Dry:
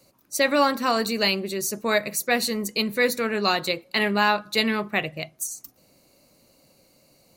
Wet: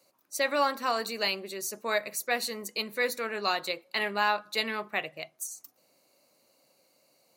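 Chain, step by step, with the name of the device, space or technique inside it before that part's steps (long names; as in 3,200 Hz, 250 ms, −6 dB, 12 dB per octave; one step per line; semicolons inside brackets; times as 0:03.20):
filter by subtraction (in parallel: low-pass filter 760 Hz 12 dB per octave + polarity inversion)
on the sum: level −7 dB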